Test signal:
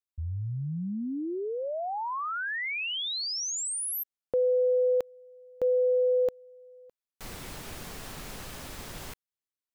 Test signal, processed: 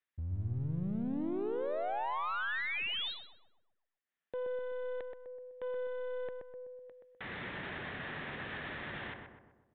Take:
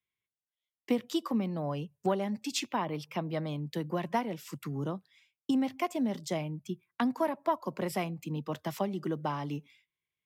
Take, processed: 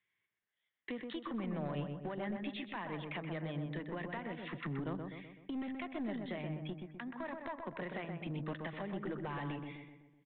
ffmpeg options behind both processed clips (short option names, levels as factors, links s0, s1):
-filter_complex "[0:a]highpass=100,equalizer=f=1800:w=2.9:g=12,acompressor=threshold=0.0158:ratio=20:attack=0.15:release=233:knee=1:detection=rms,aresample=8000,aeval=exprs='clip(val(0),-1,0.00944)':c=same,aresample=44100,asplit=2[s0][s1];[s1]adelay=126,lowpass=f=1500:p=1,volume=0.631,asplit=2[s2][s3];[s3]adelay=126,lowpass=f=1500:p=1,volume=0.54,asplit=2[s4][s5];[s5]adelay=126,lowpass=f=1500:p=1,volume=0.54,asplit=2[s6][s7];[s7]adelay=126,lowpass=f=1500:p=1,volume=0.54,asplit=2[s8][s9];[s9]adelay=126,lowpass=f=1500:p=1,volume=0.54,asplit=2[s10][s11];[s11]adelay=126,lowpass=f=1500:p=1,volume=0.54,asplit=2[s12][s13];[s13]adelay=126,lowpass=f=1500:p=1,volume=0.54[s14];[s0][s2][s4][s6][s8][s10][s12][s14]amix=inputs=8:normalize=0,volume=1.41"